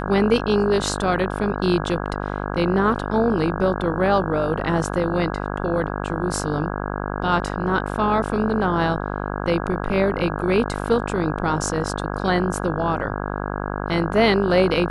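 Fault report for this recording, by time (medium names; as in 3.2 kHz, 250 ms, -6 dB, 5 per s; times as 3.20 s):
buzz 50 Hz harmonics 33 -27 dBFS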